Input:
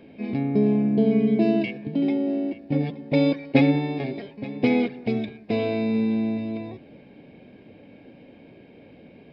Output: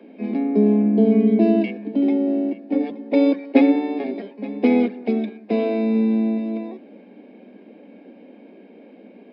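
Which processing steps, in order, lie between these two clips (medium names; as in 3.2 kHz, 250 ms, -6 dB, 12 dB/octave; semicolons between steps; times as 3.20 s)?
steep high-pass 190 Hz 96 dB/octave; treble shelf 2 kHz -10.5 dB; trim +4.5 dB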